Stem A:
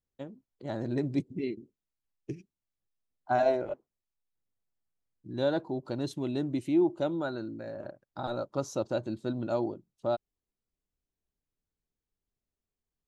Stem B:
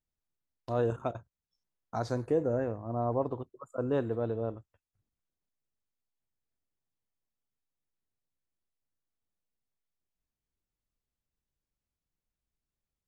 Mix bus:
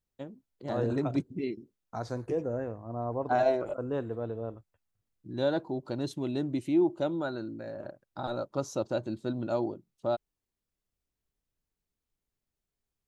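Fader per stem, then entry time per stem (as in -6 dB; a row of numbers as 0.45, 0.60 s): 0.0, -3.0 dB; 0.00, 0.00 s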